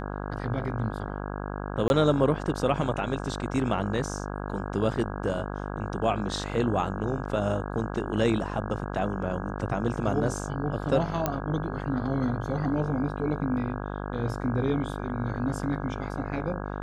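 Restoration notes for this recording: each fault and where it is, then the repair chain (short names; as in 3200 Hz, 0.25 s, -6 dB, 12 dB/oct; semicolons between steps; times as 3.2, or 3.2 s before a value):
buzz 50 Hz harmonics 33 -34 dBFS
1.88–1.9 gap 21 ms
11.26 pop -11 dBFS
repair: de-click; de-hum 50 Hz, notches 33; interpolate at 1.88, 21 ms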